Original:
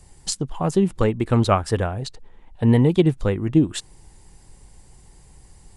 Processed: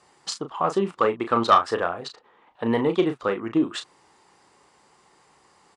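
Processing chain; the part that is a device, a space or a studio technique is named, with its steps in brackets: intercom (BPF 360–4800 Hz; bell 1200 Hz +10.5 dB 0.51 oct; soft clip -7 dBFS, distortion -15 dB; doubler 35 ms -8.5 dB)

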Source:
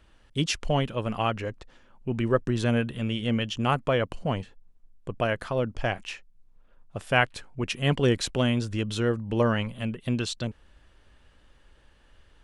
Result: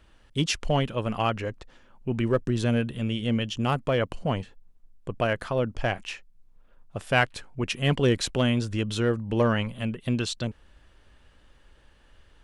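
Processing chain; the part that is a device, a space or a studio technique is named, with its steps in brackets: parallel distortion (in parallel at -6 dB: hard clip -18 dBFS, distortion -15 dB); 2.32–3.98 on the sum: bell 1400 Hz -3.5 dB 2.3 oct; gain -2.5 dB

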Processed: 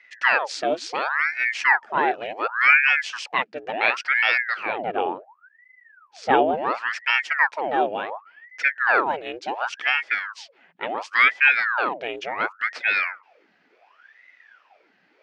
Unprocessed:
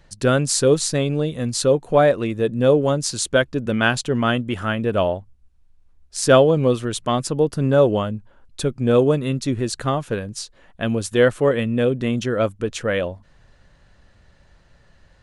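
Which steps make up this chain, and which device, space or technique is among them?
voice changer toy (ring modulator with a swept carrier 1100 Hz, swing 85%, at 0.7 Hz; speaker cabinet 540–4800 Hz, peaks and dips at 1100 Hz -5 dB, 1700 Hz +4 dB, 2500 Hz +5 dB, 3800 Hz -6 dB); 4.66–6.57 tilt -2.5 dB/oct

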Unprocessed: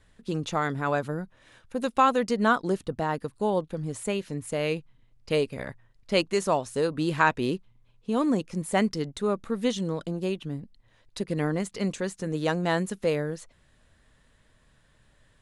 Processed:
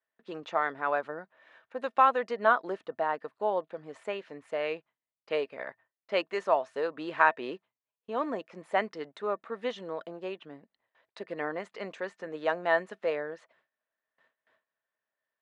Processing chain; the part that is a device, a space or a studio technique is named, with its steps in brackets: tin-can telephone (BPF 570–2200 Hz; small resonant body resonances 650/1800 Hz, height 8 dB, ringing for 0.1 s); gate with hold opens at -57 dBFS

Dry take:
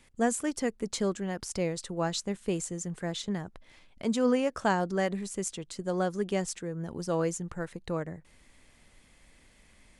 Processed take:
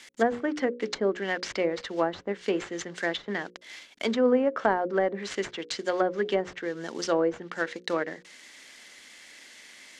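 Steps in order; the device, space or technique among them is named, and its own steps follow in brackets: early wireless headset (HPF 260 Hz 24 dB/oct; CVSD 64 kbps); band shelf 3300 Hz +9 dB 2.5 oct; notches 60/120/180/240/300/360/420/480/540 Hz; treble ducked by the level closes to 810 Hz, closed at -25 dBFS; notch 2500 Hz, Q 15; gain +6 dB

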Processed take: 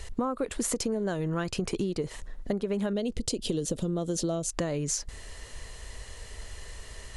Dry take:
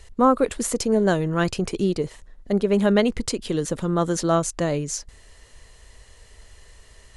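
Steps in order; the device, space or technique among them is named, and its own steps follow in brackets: 2.93–4.49 band shelf 1400 Hz -11.5 dB; serial compression, peaks first (compressor, threshold -26 dBFS, peak gain reduction 13.5 dB; compressor 2.5:1, threshold -35 dBFS, peak gain reduction 8 dB); gain +6 dB

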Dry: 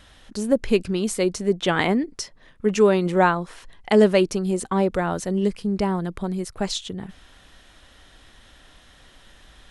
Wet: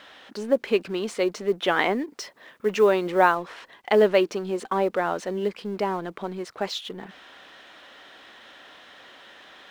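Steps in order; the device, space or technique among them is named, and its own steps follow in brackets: phone line with mismatched companding (BPF 370–3500 Hz; G.711 law mismatch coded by mu); 2.18–3.36 high shelf 7600 Hz +4.5 dB

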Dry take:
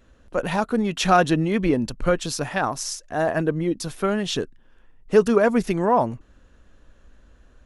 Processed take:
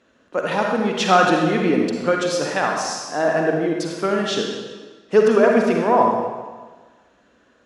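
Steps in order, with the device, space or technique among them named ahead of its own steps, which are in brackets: supermarket ceiling speaker (BPF 230–6700 Hz; reverb RT60 1.4 s, pre-delay 40 ms, DRR 0 dB); gain +1.5 dB

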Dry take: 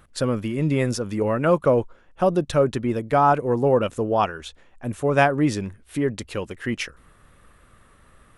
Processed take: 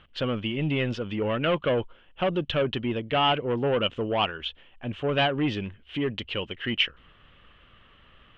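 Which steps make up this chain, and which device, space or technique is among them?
overdriven synthesiser ladder filter (soft clip -15.5 dBFS, distortion -13 dB; ladder low-pass 3200 Hz, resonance 80%); gain +9 dB

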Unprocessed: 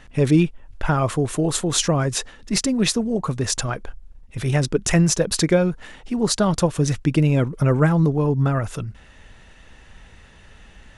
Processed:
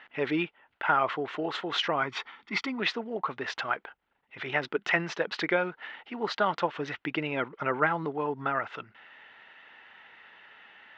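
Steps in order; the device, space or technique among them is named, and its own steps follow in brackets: LPF 6900 Hz 12 dB/oct; 2.02–2.8 comb 0.9 ms, depth 58%; phone earpiece (speaker cabinet 450–3600 Hz, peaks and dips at 530 Hz -4 dB, 870 Hz +5 dB, 1400 Hz +6 dB, 2000 Hz +7 dB, 3000 Hz +4 dB); gain -4.5 dB

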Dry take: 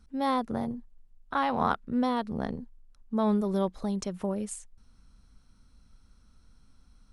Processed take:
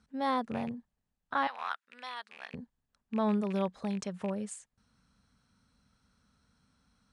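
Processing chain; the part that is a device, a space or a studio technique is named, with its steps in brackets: car door speaker with a rattle (rattling part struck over -32 dBFS, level -34 dBFS; speaker cabinet 110–9000 Hz, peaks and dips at 330 Hz -8 dB, 1700 Hz +4 dB, 5600 Hz -3 dB); 1.47–2.54 HPF 1500 Hz 12 dB/oct; gain -2.5 dB

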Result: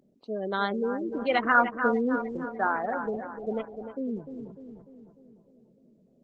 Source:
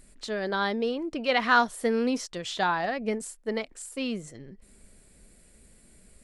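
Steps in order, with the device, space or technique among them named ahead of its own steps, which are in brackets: Wiener smoothing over 25 samples; 2.49–3.17 tone controls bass -7 dB, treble -10 dB; dark delay 0.299 s, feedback 55%, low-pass 3900 Hz, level -8.5 dB; dynamic EQ 1400 Hz, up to +3 dB, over -38 dBFS, Q 2.9; noise-suppressed video call (HPF 150 Hz 24 dB/oct; spectral gate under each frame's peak -20 dB strong; Opus 16 kbps 48000 Hz)

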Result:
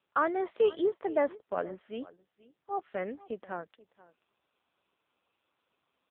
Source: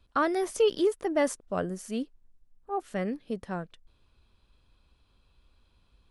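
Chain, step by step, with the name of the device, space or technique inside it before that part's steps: 1.01–1.75 treble ducked by the level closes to 1800 Hz, closed at -20.5 dBFS; satellite phone (BPF 370–3000 Hz; echo 0.483 s -20.5 dB; AMR-NB 6.7 kbps 8000 Hz)

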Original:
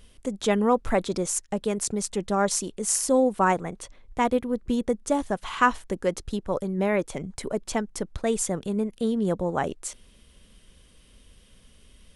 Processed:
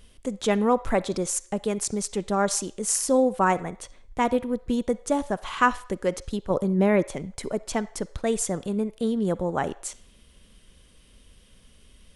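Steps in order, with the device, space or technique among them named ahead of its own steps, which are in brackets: 6.5–7.08 bell 200 Hz +5.5 dB 2.9 oct; filtered reverb send (on a send: HPF 520 Hz 24 dB/oct + LPF 6100 Hz 12 dB/oct + reverb RT60 0.55 s, pre-delay 41 ms, DRR 17.5 dB)

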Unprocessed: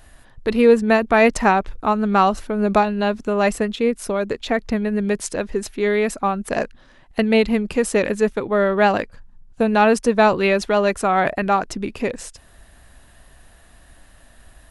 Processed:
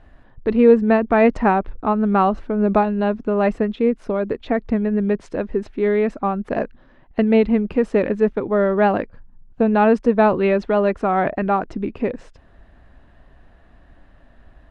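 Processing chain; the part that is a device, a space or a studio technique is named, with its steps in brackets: phone in a pocket (LPF 3500 Hz 12 dB/oct; bell 280 Hz +3 dB 1.2 oct; high shelf 2100 Hz -11 dB)

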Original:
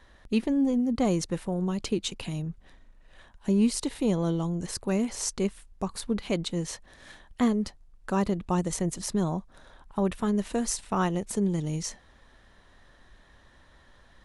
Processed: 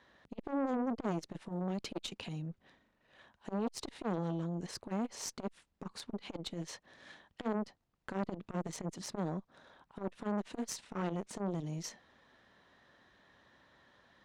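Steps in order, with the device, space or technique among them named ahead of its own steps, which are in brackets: valve radio (BPF 140–5400 Hz; tube stage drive 23 dB, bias 0.7; core saturation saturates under 730 Hz); gain -1 dB

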